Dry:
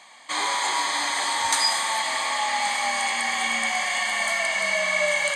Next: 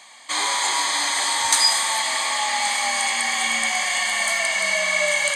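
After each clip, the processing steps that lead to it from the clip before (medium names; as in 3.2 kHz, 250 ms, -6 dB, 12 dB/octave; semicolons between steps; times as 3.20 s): treble shelf 3.3 kHz +7.5 dB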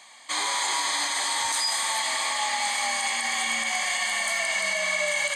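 peak limiter -13 dBFS, peak gain reduction 11 dB; trim -3.5 dB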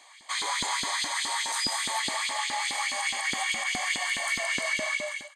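fade out at the end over 0.53 s; LFO high-pass saw up 4.8 Hz 240–3800 Hz; trim -5 dB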